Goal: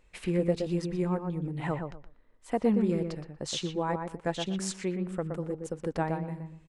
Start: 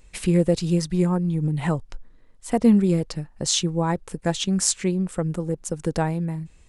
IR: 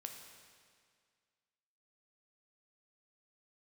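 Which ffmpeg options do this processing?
-filter_complex "[0:a]bass=frequency=250:gain=-7,treble=frequency=4000:gain=-11,asplit=2[link_01][link_02];[link_02]adelay=120,lowpass=frequency=1900:poles=1,volume=-5dB,asplit=2[link_03][link_04];[link_04]adelay=120,lowpass=frequency=1900:poles=1,volume=0.22,asplit=2[link_05][link_06];[link_06]adelay=120,lowpass=frequency=1900:poles=1,volume=0.22[link_07];[link_03][link_05][link_07]amix=inputs=3:normalize=0[link_08];[link_01][link_08]amix=inputs=2:normalize=0,volume=-5.5dB"

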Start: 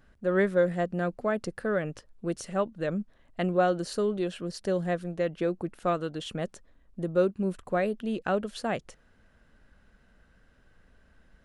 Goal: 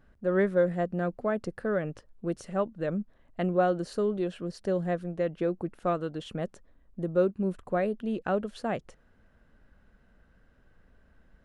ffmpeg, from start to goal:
ffmpeg -i in.wav -af "highshelf=frequency=2200:gain=-8.5" out.wav

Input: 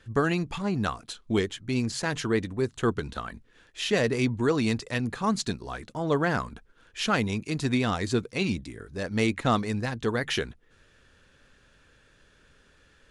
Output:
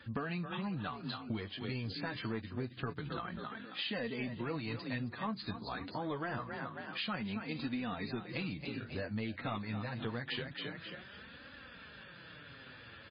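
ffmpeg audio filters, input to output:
ffmpeg -i in.wav -filter_complex "[0:a]areverse,acompressor=mode=upward:threshold=-47dB:ratio=2.5,areverse,highpass=frequency=73:width=0.5412,highpass=frequency=73:width=1.3066,equalizer=frequency=400:width=2.9:gain=-6.5,asplit=4[link_01][link_02][link_03][link_04];[link_02]adelay=268,afreqshift=32,volume=-12dB[link_05];[link_03]adelay=536,afreqshift=64,volume=-22.2dB[link_06];[link_04]adelay=804,afreqshift=96,volume=-32.3dB[link_07];[link_01][link_05][link_06][link_07]amix=inputs=4:normalize=0,asoftclip=type=tanh:threshold=-16dB,flanger=delay=3.4:depth=7.3:regen=17:speed=0.26:shape=triangular,acompressor=threshold=-44dB:ratio=6,volume=7.5dB" -ar 11025 -c:a libmp3lame -b:a 16k out.mp3

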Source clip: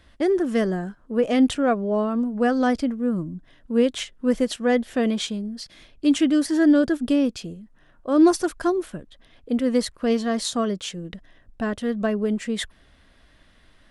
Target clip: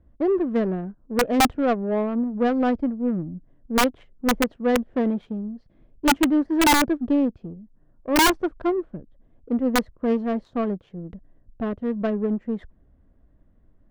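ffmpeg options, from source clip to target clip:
ffmpeg -i in.wav -af "adynamicsmooth=sensitivity=0.5:basefreq=500,aeval=exprs='(mod(3.98*val(0)+1,2)-1)/3.98':channel_layout=same" out.wav

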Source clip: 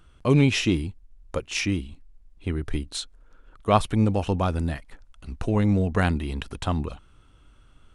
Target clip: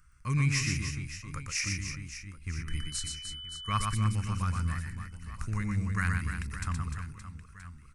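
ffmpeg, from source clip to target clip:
ffmpeg -i in.wav -filter_complex "[0:a]firequalizer=gain_entry='entry(130,0);entry(260,-13);entry(400,-19);entry(690,-24);entry(1100,0);entry(2100,5);entry(3300,-15);entry(4900,5);entry(8300,7)':delay=0.05:min_phase=1,asettb=1/sr,asplit=3[link_01][link_02][link_03];[link_01]atrim=end=2.684[link_04];[link_02]atrim=start=2.68:end=3.82,asetpts=PTS-STARTPTS,afade=type=in:duration=0.004:curve=qsin,afade=type=out:start_time=1.136:duration=0.004:curve=qsin,aeval=exprs='val(0)+0.00891*sin(2*PI*3000*n/s)':channel_layout=same[link_05];[link_03]atrim=start=3.816[link_06];[link_04][link_05]acrossfade=duration=0.004:curve1=hsin:curve2=qsin[link_07];[link_07][link_06]acrossfade=duration=0.004:curve1=qsin:curve2=hsin,aecho=1:1:120|300|570|975|1582:0.631|0.398|0.251|0.158|0.1,volume=-6.5dB" out.wav

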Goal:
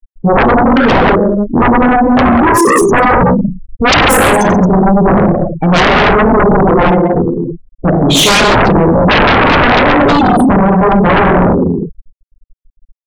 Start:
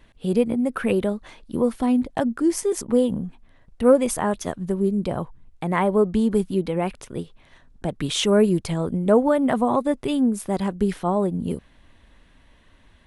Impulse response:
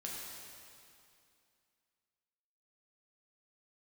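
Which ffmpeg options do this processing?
-filter_complex "[1:a]atrim=start_sample=2205,afade=type=out:start_time=0.4:duration=0.01,atrim=end_sample=18081[link_01];[0:a][link_01]afir=irnorm=-1:irlink=0,afftfilt=real='re*gte(hypot(re,im),0.0398)':imag='im*gte(hypot(re,im),0.0398)':win_size=1024:overlap=0.75,aeval=exprs='0.596*sin(PI/2*8.91*val(0)/0.596)':channel_layout=same"

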